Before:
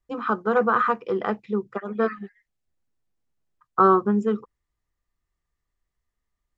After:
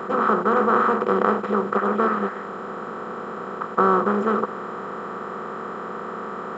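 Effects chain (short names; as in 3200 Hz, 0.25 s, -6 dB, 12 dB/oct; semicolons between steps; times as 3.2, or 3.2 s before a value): per-bin compression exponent 0.2; gain -5 dB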